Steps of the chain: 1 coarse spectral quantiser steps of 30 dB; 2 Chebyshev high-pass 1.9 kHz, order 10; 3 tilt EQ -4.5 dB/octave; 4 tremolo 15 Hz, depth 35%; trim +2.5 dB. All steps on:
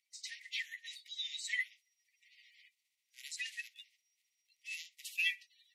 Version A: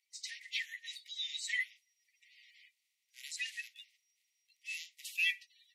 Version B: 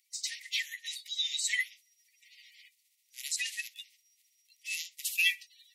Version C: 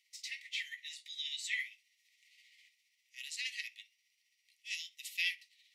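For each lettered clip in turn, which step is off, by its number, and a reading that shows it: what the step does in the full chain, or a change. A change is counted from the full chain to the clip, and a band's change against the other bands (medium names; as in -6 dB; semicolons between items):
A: 4, loudness change +1.5 LU; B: 3, momentary loudness spread change +2 LU; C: 1, momentary loudness spread change -1 LU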